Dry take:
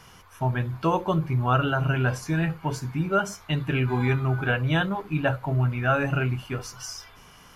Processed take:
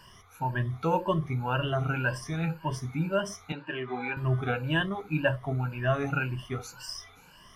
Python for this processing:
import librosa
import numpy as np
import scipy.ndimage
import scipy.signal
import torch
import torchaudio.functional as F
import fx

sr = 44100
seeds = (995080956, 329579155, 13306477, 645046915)

y = fx.spec_ripple(x, sr, per_octave=1.3, drift_hz=1.9, depth_db=16)
y = fx.bandpass_edges(y, sr, low_hz=360.0, high_hz=3100.0, at=(3.52, 4.17))
y = y * librosa.db_to_amplitude(-6.5)